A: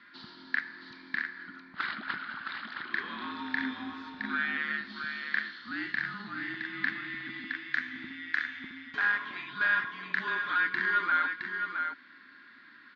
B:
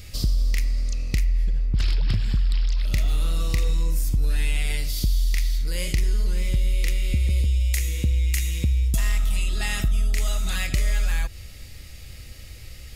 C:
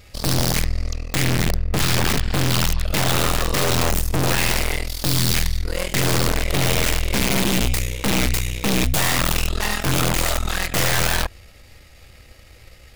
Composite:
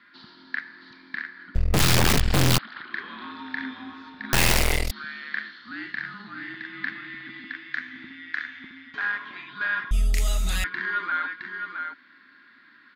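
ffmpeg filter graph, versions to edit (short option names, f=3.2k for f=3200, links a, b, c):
-filter_complex "[2:a]asplit=2[a][b];[0:a]asplit=4[c][d][e][f];[c]atrim=end=1.552[g];[a]atrim=start=1.548:end=2.582[h];[d]atrim=start=2.578:end=4.332[i];[b]atrim=start=4.328:end=4.912[j];[e]atrim=start=4.908:end=9.912[k];[1:a]atrim=start=9.908:end=10.642[l];[f]atrim=start=10.638[m];[g][h]acrossfade=d=0.004:c1=hsin:c2=hsin[n];[n][i]acrossfade=d=0.004:c1=hsin:c2=hsin[o];[o][j]acrossfade=d=0.004:c1=hsin:c2=hsin[p];[p][k]acrossfade=d=0.004:c1=hsin:c2=hsin[q];[q][l]acrossfade=d=0.004:c1=hsin:c2=hsin[r];[r][m]acrossfade=d=0.004:c1=hsin:c2=hsin"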